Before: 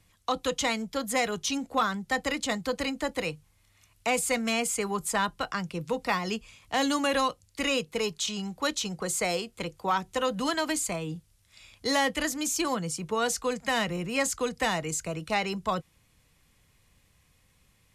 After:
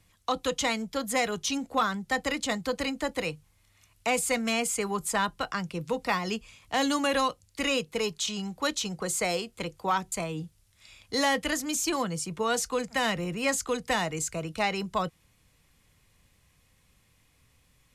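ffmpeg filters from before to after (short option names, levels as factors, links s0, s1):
-filter_complex "[0:a]asplit=2[s0][s1];[s0]atrim=end=10.122[s2];[s1]atrim=start=10.838[s3];[s2][s3]acrossfade=d=0.004:c1=hsin:c2=hsin"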